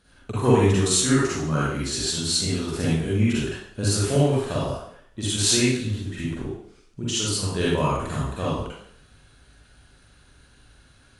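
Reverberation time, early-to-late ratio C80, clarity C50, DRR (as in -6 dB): 0.65 s, 2.0 dB, -3.5 dB, -8.0 dB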